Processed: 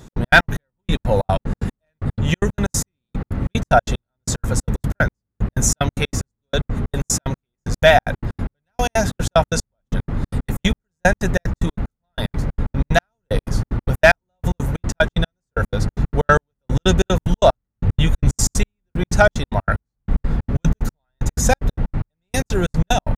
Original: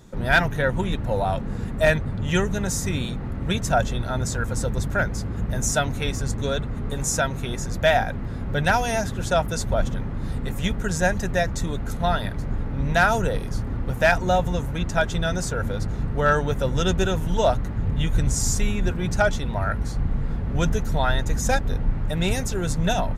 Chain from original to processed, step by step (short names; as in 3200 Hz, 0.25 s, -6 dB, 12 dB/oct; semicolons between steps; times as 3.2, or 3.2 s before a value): step gate "x.x.x.x....x.x" 186 bpm -60 dB; gain +7 dB